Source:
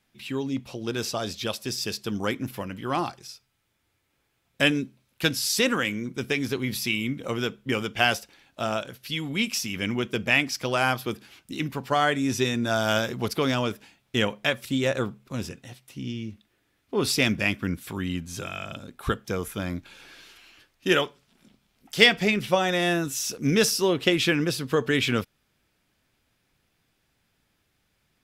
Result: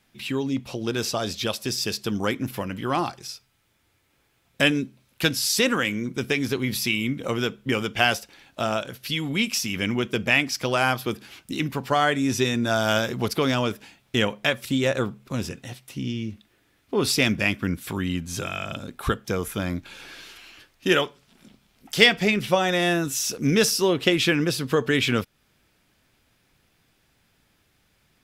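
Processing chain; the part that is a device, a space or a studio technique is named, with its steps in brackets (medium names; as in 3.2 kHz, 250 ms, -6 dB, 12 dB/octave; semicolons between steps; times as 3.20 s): parallel compression (in parallel at 0 dB: compression, threshold -34 dBFS, peak gain reduction 21 dB)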